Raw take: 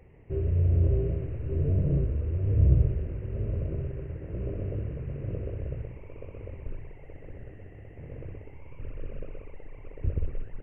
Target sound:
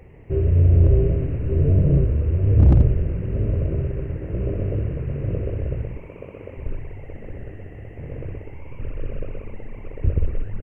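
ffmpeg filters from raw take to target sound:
-filter_complex "[0:a]asettb=1/sr,asplit=3[a][b][c];[a]atrim=end=6.014[d];[b]atrim=start=6.01:end=6.57,asetpts=PTS-STARTPTS,afade=t=in:d=0.004:c=qsin,afade=t=out:st=0.556:d=0.004:c=qsin,highpass=f=260:p=1[e];[c]atrim=start=6.566[f];[d][e]acrossfade=d=0.004:c1=hsin:c2=qsin[g];[g][f]acrossfade=d=0.004:c1=qsin:c2=hsin,asplit=4[h][i][j][k];[i]adelay=240,afreqshift=-120,volume=-15.5dB[l];[j]adelay=480,afreqshift=-240,volume=-24.1dB[m];[k]adelay=720,afreqshift=-360,volume=-32.8dB[n];[h][l][m][n]amix=inputs=4:normalize=0,aeval=exprs='0.188*(abs(mod(val(0)/0.188+3,4)-2)-1)':c=same,volume=8.5dB"

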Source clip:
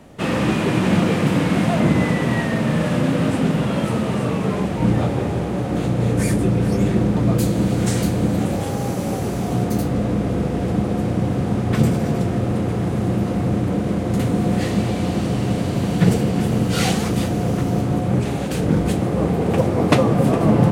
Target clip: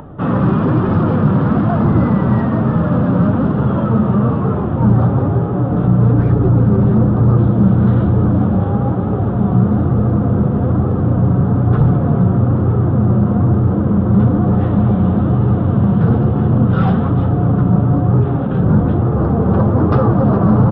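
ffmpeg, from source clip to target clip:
-af "aresample=8000,aresample=44100,aresample=11025,volume=15dB,asoftclip=hard,volume=-15dB,aresample=44100,flanger=delay=6.7:depth=3.4:regen=-53:speed=0.17:shape=triangular,highshelf=f=1.7k:t=q:w=3:g=-9,flanger=delay=2.3:depth=3:regen=62:speed=1.1:shape=sinusoidal,equalizer=f=91:w=0.51:g=12,acompressor=mode=upward:threshold=-37dB:ratio=2.5,volume=8.5dB"

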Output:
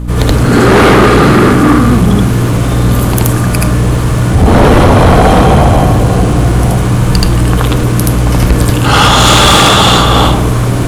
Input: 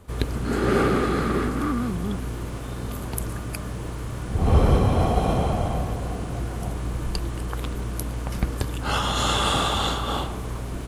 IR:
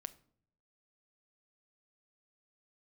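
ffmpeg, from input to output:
-filter_complex "[0:a]aeval=exprs='val(0)+0.0224*(sin(2*PI*60*n/s)+sin(2*PI*2*60*n/s)/2+sin(2*PI*3*60*n/s)/3+sin(2*PI*4*60*n/s)/4+sin(2*PI*5*60*n/s)/5)':c=same,asplit=2[a][b];[1:a]atrim=start_sample=2205,adelay=77[c];[b][c]afir=irnorm=-1:irlink=0,volume=6dB[d];[a][d]amix=inputs=2:normalize=0,aeval=exprs='1.12*sin(PI/2*5.62*val(0)/1.12)':c=same,volume=-2dB"

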